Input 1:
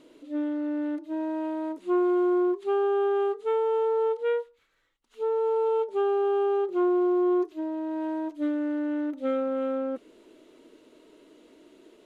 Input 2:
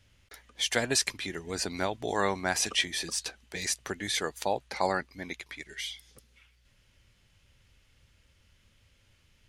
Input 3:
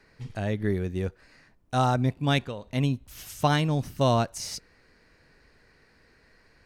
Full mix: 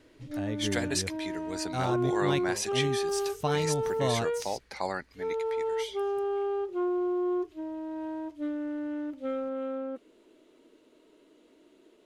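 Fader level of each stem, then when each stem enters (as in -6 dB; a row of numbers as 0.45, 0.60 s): -5.5, -4.5, -7.5 dB; 0.00, 0.00, 0.00 s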